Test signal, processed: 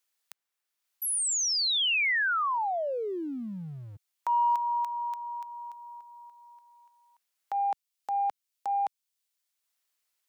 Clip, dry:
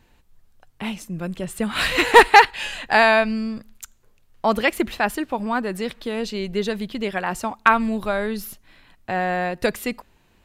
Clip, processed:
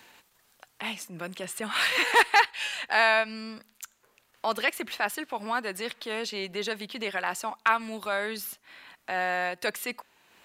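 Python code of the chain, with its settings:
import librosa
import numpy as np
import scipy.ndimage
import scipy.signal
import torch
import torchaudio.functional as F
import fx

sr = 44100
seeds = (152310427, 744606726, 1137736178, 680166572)

y = fx.transient(x, sr, attack_db=-6, sustain_db=-2)
y = fx.highpass(y, sr, hz=1100.0, slope=6)
y = fx.band_squash(y, sr, depth_pct=40)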